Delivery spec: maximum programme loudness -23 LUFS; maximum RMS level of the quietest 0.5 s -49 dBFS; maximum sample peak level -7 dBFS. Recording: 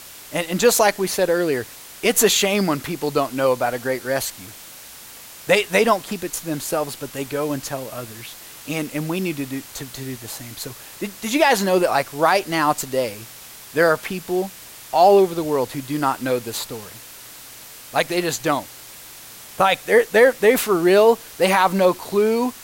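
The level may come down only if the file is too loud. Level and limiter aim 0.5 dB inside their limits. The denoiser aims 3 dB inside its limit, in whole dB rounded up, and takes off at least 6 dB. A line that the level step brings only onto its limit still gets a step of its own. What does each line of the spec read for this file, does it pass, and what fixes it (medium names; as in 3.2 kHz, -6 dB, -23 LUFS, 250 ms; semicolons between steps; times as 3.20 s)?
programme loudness -19.5 LUFS: fail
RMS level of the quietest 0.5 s -41 dBFS: fail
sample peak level -4.0 dBFS: fail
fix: noise reduction 7 dB, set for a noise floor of -41 dBFS; trim -4 dB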